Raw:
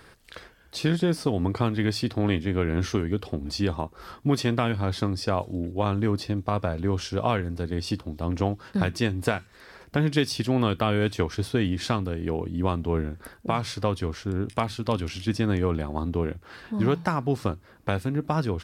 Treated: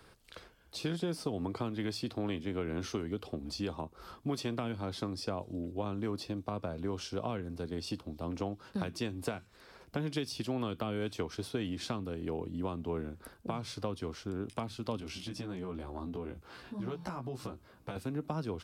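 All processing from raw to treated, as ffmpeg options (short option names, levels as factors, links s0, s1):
-filter_complex "[0:a]asettb=1/sr,asplit=3[s0][s1][s2];[s0]atrim=end=15.004[s3];[s1]atrim=start=15:end=17.96,asetpts=PTS-STARTPTS,afade=t=in:d=0.004:c=qsin,afade=t=out:st=2.956:d=0.004:c=qsin,acompressor=threshold=0.0282:ratio=3:attack=3.2:release=140:knee=1:detection=peak,asplit=2[s4][s5];[s5]adelay=16,volume=0.75[s6];[s4][s6]amix=inputs=2:normalize=0,atrim=end_sample=130536[s7];[s2]atrim=start=17.956[s8];[s3][s7]acrossfade=d=0.004:c1=hsin:c2=qsin[s9];[s9][s8]acrossfade=d=0.004:c1=qsin:c2=hsin,equalizer=f=1800:w=3.4:g=-6.5,acrossover=split=170|420[s10][s11][s12];[s10]acompressor=threshold=0.0112:ratio=4[s13];[s11]acompressor=threshold=0.0355:ratio=4[s14];[s12]acompressor=threshold=0.0282:ratio=4[s15];[s13][s14][s15]amix=inputs=3:normalize=0,volume=0.473"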